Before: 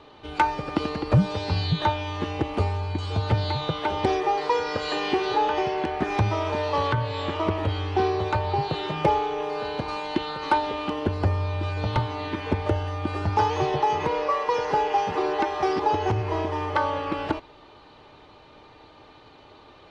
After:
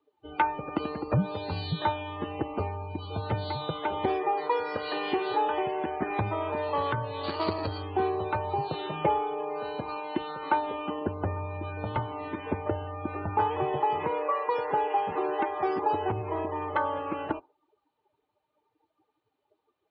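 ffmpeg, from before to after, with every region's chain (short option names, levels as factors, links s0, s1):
-filter_complex "[0:a]asettb=1/sr,asplit=3[s0][s1][s2];[s0]atrim=end=7.234[s3];[s1]atrim=start=7.23:end=7.83,asetpts=PTS-STARTPTS,afade=t=in:d=0.004:c=qsin,afade=t=out:st=0.596:d=0.004:c=qsin,highshelf=f=3000:g=9,adynamicsmooth=sensitivity=3:basefreq=530,lowpass=f=4500:t=q:w=11[s4];[s2]atrim=start=7.826[s5];[s3][s4]acrossfade=d=0.004:c1=hsin:c2=qsin[s6];[s6][s5]acrossfade=d=0.004:c1=qsin:c2=hsin,asettb=1/sr,asplit=3[s7][s8][s9];[s7]atrim=end=9.954[s10];[s8]atrim=start=9.95:end=13.8,asetpts=PTS-STARTPTS,afade=t=in:d=0.004:c=qsin,afade=t=out:st=3.846:d=0.004:c=qsin,acrossover=split=4300[s11][s12];[s12]acompressor=threshold=0.00158:ratio=4:attack=1:release=60[s13];[s11][s13]amix=inputs=2:normalize=0,aecho=1:1:849:0.0668,atrim=end_sample=169785[s14];[s9]atrim=start=13.796[s15];[s10][s14]acrossfade=d=0.004:c1=hsin:c2=qsin[s16];[s16][s15]acrossfade=d=0.004:c1=qsin:c2=hsin,lowpass=4200,afftdn=nr=28:nf=-36,highpass=f=160:p=1,volume=0.668"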